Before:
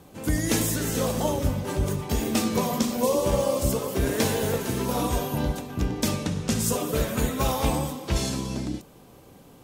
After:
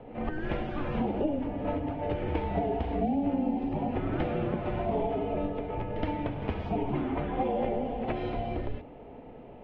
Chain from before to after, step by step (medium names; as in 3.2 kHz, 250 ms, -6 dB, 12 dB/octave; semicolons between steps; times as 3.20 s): high-order bell 810 Hz +11 dB 1.3 oct; pre-echo 70 ms -14.5 dB; compression, threshold -26 dBFS, peak gain reduction 13.5 dB; mistuned SSB -300 Hz 190–3100 Hz